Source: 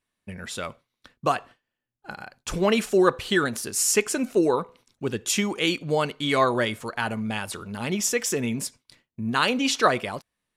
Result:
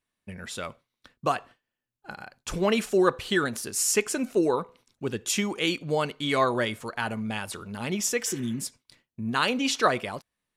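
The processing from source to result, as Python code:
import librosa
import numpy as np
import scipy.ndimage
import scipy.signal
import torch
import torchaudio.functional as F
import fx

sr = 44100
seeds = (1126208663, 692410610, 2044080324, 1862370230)

y = fx.spec_repair(x, sr, seeds[0], start_s=8.29, length_s=0.34, low_hz=390.0, high_hz=3000.0, source='both')
y = y * 10.0 ** (-2.5 / 20.0)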